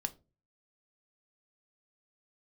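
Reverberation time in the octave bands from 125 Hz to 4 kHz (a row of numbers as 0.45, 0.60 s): 0.55, 0.45, 0.40, 0.25, 0.20, 0.20 s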